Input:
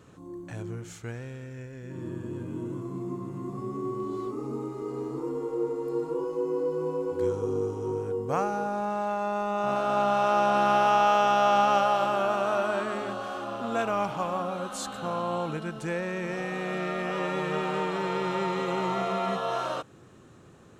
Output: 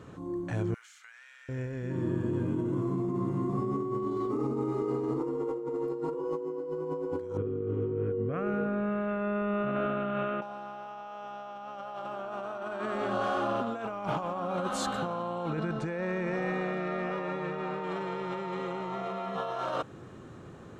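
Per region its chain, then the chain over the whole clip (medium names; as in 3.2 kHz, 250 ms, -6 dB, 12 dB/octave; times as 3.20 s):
0.74–1.49 s: high-pass 1.4 kHz 24 dB/octave + compression, threshold -52 dBFS
7.37–10.42 s: distance through air 240 m + static phaser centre 2.1 kHz, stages 4
15.50–17.84 s: distance through air 65 m + band-stop 3.1 kHz, Q 8.9
whole clip: treble shelf 4.5 kHz -11 dB; band-stop 2.6 kHz, Q 27; compressor with a negative ratio -35 dBFS, ratio -1; trim +1.5 dB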